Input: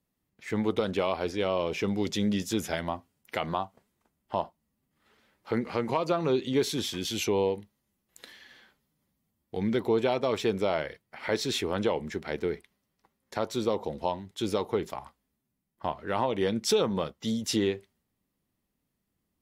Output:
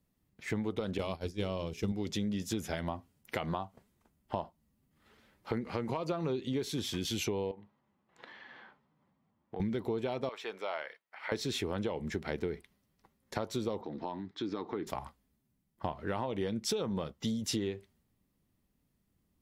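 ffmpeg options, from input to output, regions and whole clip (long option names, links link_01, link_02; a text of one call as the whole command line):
ffmpeg -i in.wav -filter_complex "[0:a]asettb=1/sr,asplit=3[link_01][link_02][link_03];[link_01]atrim=end=0.984[link_04];[link_02]atrim=start=0.98:end=1.92,asetpts=PTS-STARTPTS,afade=type=in:duration=0.004:curve=qsin,afade=type=out:start_time=0.936:duration=0.004:curve=qsin,bandreject=frequency=60:width_type=h:width=6,bandreject=frequency=120:width_type=h:width=6,bandreject=frequency=180:width_type=h:width=6,bandreject=frequency=240:width_type=h:width=6,bandreject=frequency=300:width_type=h:width=6,bandreject=frequency=360:width_type=h:width=6,bandreject=frequency=420:width_type=h:width=6,agate=range=-33dB:threshold=-25dB:ratio=3:release=100:detection=peak,bass=frequency=250:gain=10,treble=frequency=4000:gain=13[link_05];[link_03]atrim=start=1.916[link_06];[link_04][link_05]acrossfade=duration=0.004:curve1=hsin:curve2=qsin[link_07];[link_07][link_06]acrossfade=duration=0.004:curve1=qsin:curve2=hsin,asettb=1/sr,asplit=3[link_08][link_09][link_10];[link_08]atrim=end=7.514[link_11];[link_09]atrim=start=7.51:end=9.6,asetpts=PTS-STARTPTS,afade=type=in:duration=0.004:curve=qsin,afade=type=out:start_time=2.086:duration=0.004:curve=qsin,equalizer=frequency=950:width=1:gain=10.5,acompressor=threshold=-48dB:ratio=2:attack=3.2:release=140:knee=1:detection=peak,highpass=130,lowpass=2800[link_12];[link_10]atrim=start=9.596[link_13];[link_11][link_12]acrossfade=duration=0.004:curve1=hsin:curve2=qsin[link_14];[link_14][link_13]acrossfade=duration=0.004:curve1=qsin:curve2=hsin,asettb=1/sr,asplit=3[link_15][link_16][link_17];[link_15]atrim=end=10.294[link_18];[link_16]atrim=start=10.29:end=11.32,asetpts=PTS-STARTPTS,afade=type=in:duration=0.004:curve=qsin,afade=type=out:start_time=1.026:duration=0.004:curve=qsin,highpass=1000,equalizer=frequency=11000:width_type=o:width=2.6:gain=-13.5[link_19];[link_17]atrim=start=11.316[link_20];[link_18][link_19]acrossfade=duration=0.004:curve1=hsin:curve2=qsin[link_21];[link_21][link_20]acrossfade=duration=0.004:curve1=qsin:curve2=hsin,asettb=1/sr,asplit=3[link_22][link_23][link_24];[link_22]atrim=end=13.814[link_25];[link_23]atrim=start=13.81:end=14.87,asetpts=PTS-STARTPTS,afade=type=in:duration=0.004:curve=qsin,afade=type=out:start_time=1.056:duration=0.004:curve=qsin,highpass=180,equalizer=frequency=300:width_type=q:width=4:gain=8,equalizer=frequency=550:width_type=q:width=4:gain=-9,equalizer=frequency=1200:width_type=q:width=4:gain=4,equalizer=frequency=1700:width_type=q:width=4:gain=5,equalizer=frequency=2900:width_type=q:width=4:gain=-8,lowpass=frequency=4700:width=0.5412,lowpass=frequency=4700:width=1.3066,acompressor=threshold=-40dB:ratio=2:attack=3.2:release=140:knee=1:detection=peak[link_26];[link_24]atrim=start=14.866[link_27];[link_25][link_26]acrossfade=duration=0.004:curve1=hsin:curve2=qsin[link_28];[link_28][link_27]acrossfade=duration=0.004:curve1=qsin:curve2=hsin,lowshelf=frequency=220:gain=7.5,acompressor=threshold=-31dB:ratio=6" out.wav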